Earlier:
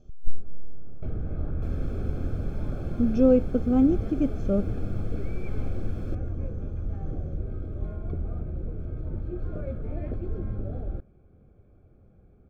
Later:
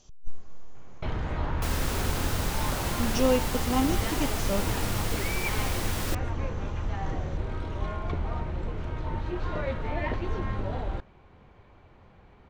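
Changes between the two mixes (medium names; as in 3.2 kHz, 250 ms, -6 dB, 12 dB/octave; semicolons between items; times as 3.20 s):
speech -8.5 dB; first sound: add low-pass 4.4 kHz 12 dB/octave; master: remove boxcar filter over 46 samples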